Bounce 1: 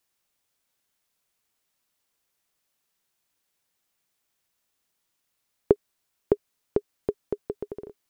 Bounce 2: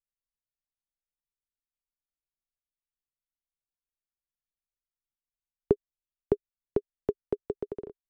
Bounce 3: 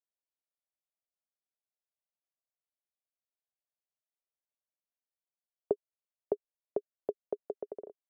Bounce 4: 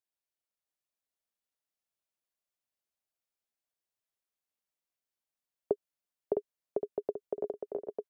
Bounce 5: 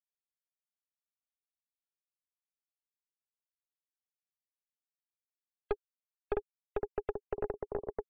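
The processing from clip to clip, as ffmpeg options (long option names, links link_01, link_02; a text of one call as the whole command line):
ffmpeg -i in.wav -filter_complex "[0:a]anlmdn=0.00398,acrossover=split=340[link_01][link_02];[link_02]alimiter=limit=-20dB:level=0:latency=1:release=12[link_03];[link_01][link_03]amix=inputs=2:normalize=0" out.wav
ffmpeg -i in.wav -af "bandpass=frequency=620:width_type=q:width=3.4:csg=0,volume=3.5dB" out.wav
ffmpeg -i in.wav -af "aecho=1:1:660|1122|1445|1672|1830:0.631|0.398|0.251|0.158|0.1" out.wav
ffmpeg -i in.wav -af "aeval=exprs='(tanh(31.6*val(0)+0.7)-tanh(0.7))/31.6':channel_layout=same,afftfilt=real='re*gte(hypot(re,im),0.00126)':imag='im*gte(hypot(re,im),0.00126)':win_size=1024:overlap=0.75,volume=4.5dB" out.wav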